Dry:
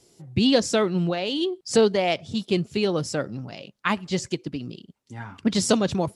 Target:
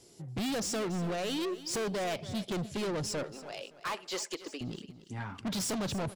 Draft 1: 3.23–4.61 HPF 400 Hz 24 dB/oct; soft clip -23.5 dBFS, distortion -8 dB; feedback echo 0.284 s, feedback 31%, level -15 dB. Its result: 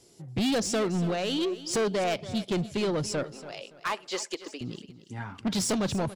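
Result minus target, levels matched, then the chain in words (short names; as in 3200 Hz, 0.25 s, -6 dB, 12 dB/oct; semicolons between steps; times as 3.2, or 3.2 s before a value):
soft clip: distortion -4 dB
3.23–4.61 HPF 400 Hz 24 dB/oct; soft clip -31.5 dBFS, distortion -4 dB; feedback echo 0.284 s, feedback 31%, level -15 dB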